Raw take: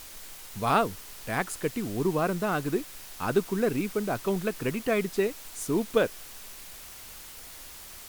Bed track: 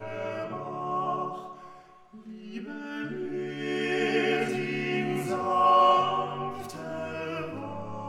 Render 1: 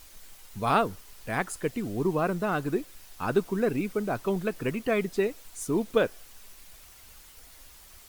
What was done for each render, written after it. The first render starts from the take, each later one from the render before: denoiser 8 dB, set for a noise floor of -45 dBFS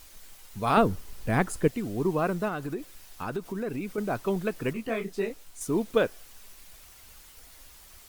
0.77–1.68 low shelf 450 Hz +10.5 dB; 2.48–3.98 compressor 3:1, threshold -30 dBFS; 4.73–5.61 detuned doubles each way 54 cents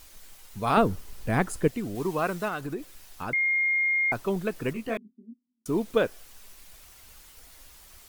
1.95–2.61 tilt shelf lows -4.5 dB, about 720 Hz; 3.33–4.12 bleep 2130 Hz -21.5 dBFS; 4.97–5.66 Butterworth band-pass 240 Hz, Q 7.1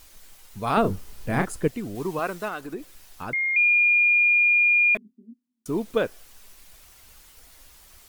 0.81–1.46 doubler 31 ms -6 dB; 2.19–2.74 bell 130 Hz -12 dB; 3.56–4.95 bleep 2420 Hz -15.5 dBFS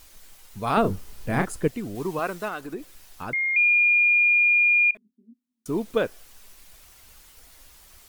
4.91–5.71 fade in, from -24 dB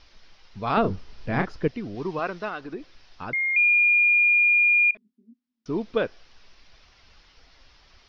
elliptic low-pass 5400 Hz, stop band 40 dB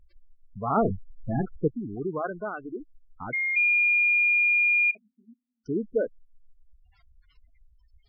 spectral gate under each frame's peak -10 dB strong; high shelf 2700 Hz -6 dB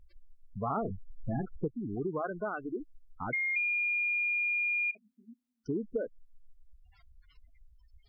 compressor 6:1, threshold -30 dBFS, peak gain reduction 11.5 dB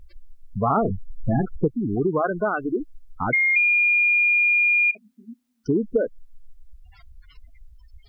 gain +12 dB

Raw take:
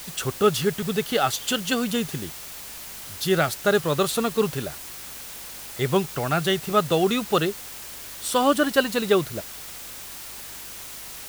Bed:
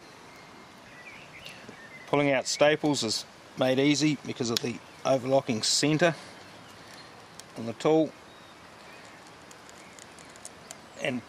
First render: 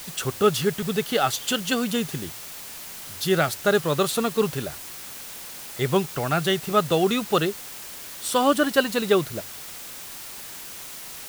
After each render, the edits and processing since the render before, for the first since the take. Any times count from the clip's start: de-hum 50 Hz, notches 2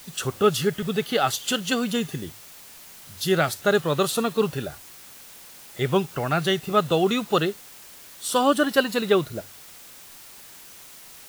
noise print and reduce 7 dB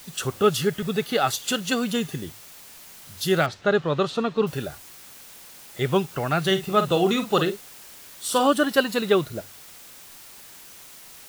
0.81–1.81 notch 3100 Hz, Q 14; 3.46–4.47 air absorption 160 m; 6.41–8.47 doubler 47 ms -9 dB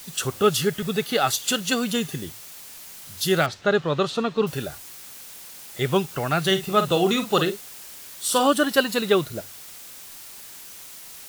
bell 15000 Hz +4.5 dB 2.4 oct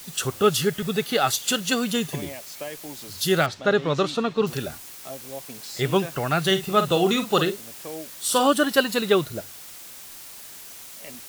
add bed -13.5 dB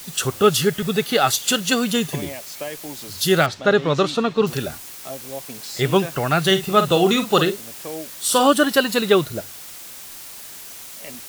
gain +4 dB; limiter -3 dBFS, peak gain reduction 2.5 dB

